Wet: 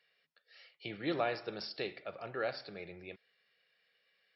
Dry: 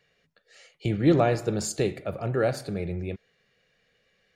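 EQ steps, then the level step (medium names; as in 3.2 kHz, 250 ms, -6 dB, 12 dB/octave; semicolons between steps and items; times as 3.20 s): high-pass 1.3 kHz 6 dB/octave; brick-wall FIR low-pass 5.6 kHz; -3.5 dB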